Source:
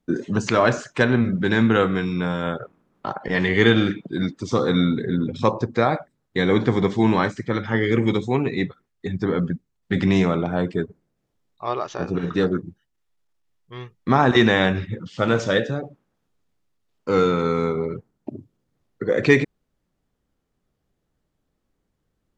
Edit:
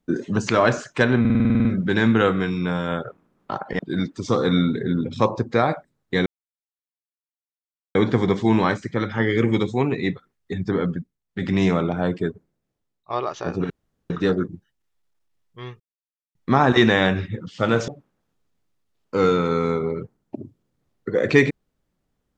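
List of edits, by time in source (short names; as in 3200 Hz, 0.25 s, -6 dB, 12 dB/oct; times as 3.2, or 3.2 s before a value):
1.2 stutter 0.05 s, 10 plays
3.34–4.02 cut
6.49 insert silence 1.69 s
9.32–10.24 dip -9 dB, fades 0.42 s
10.74–11.64 fade out, to -11 dB
12.24 insert room tone 0.40 s
13.94 insert silence 0.55 s
15.47–15.82 cut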